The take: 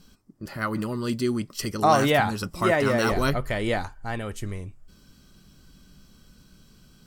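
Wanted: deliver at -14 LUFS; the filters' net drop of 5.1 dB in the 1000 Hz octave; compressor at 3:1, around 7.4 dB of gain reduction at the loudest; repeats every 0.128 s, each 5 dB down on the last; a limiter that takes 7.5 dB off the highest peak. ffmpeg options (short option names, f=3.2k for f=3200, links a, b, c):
-af "equalizer=f=1k:t=o:g=-7.5,acompressor=threshold=-28dB:ratio=3,alimiter=level_in=1dB:limit=-24dB:level=0:latency=1,volume=-1dB,aecho=1:1:128|256|384|512|640|768|896:0.562|0.315|0.176|0.0988|0.0553|0.031|0.0173,volume=19.5dB"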